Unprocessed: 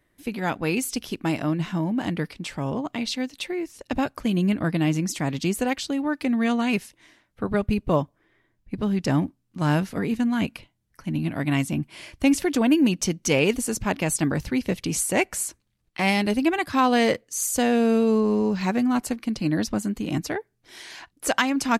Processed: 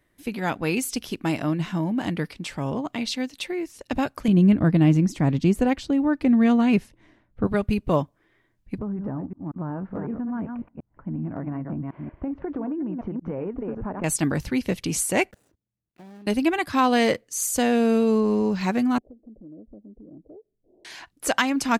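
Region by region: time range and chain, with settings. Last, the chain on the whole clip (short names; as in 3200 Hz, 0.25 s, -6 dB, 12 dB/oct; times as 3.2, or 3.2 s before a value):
4.28–7.47 tilt -2.5 dB/oct + mismatched tape noise reduction decoder only
8.78–14.04 reverse delay 0.184 s, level -9 dB + LPF 1300 Hz 24 dB/oct + compressor 12:1, threshold -25 dBFS
15.31–16.27 median filter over 41 samples + HPF 73 Hz + level quantiser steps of 22 dB
18.98–20.85 steep low-pass 620 Hz 48 dB/oct + bell 120 Hz -11.5 dB 1.6 oct + compressor 2.5:1, threshold -49 dBFS
whole clip: dry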